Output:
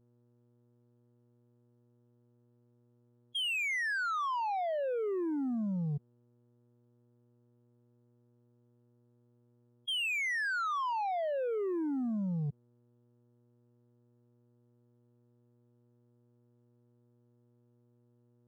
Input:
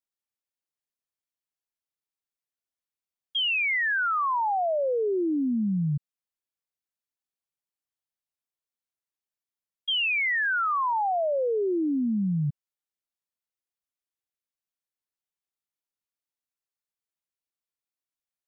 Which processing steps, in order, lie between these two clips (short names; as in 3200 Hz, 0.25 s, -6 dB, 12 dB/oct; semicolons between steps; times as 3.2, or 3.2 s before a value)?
buzz 120 Hz, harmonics 34, -60 dBFS -6 dB/oct; spectral gate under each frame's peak -15 dB strong; sample leveller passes 1; gain -8.5 dB